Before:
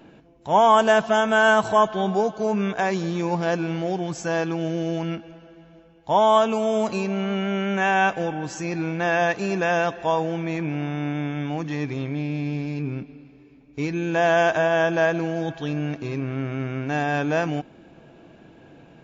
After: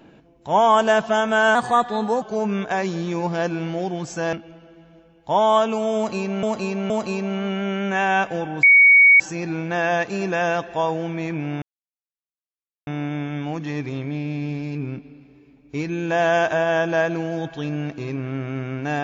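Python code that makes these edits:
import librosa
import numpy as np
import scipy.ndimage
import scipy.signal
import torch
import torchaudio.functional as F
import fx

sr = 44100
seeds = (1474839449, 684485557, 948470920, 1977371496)

y = fx.edit(x, sr, fx.speed_span(start_s=1.55, length_s=0.75, speed=1.12),
    fx.cut(start_s=4.41, length_s=0.72),
    fx.repeat(start_s=6.76, length_s=0.47, count=3),
    fx.insert_tone(at_s=8.49, length_s=0.57, hz=2240.0, db=-8.0),
    fx.insert_silence(at_s=10.91, length_s=1.25), tone=tone)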